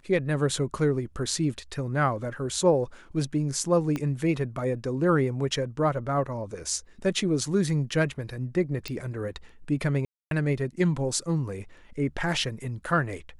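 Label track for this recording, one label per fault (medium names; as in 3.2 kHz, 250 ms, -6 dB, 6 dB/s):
3.960000	3.960000	pop -17 dBFS
8.880000	8.880000	pop -18 dBFS
10.050000	10.310000	dropout 262 ms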